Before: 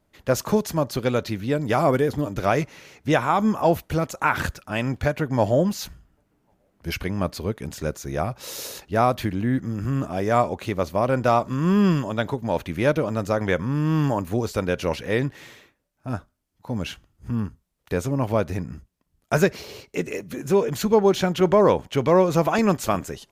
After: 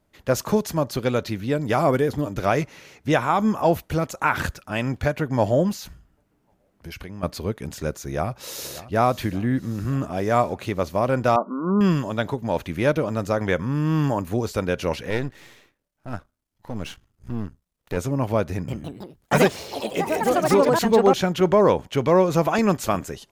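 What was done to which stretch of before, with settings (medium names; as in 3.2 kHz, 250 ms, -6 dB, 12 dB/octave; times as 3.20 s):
5.74–7.23 s: compression, threshold -33 dBFS
7.97–8.94 s: echo throw 580 ms, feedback 70%, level -16 dB
11.36–11.81 s: brick-wall FIR band-pass 180–1500 Hz
15.10–17.97 s: partial rectifier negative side -12 dB
18.52–21.61 s: ever faster or slower copies 161 ms, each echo +4 st, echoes 3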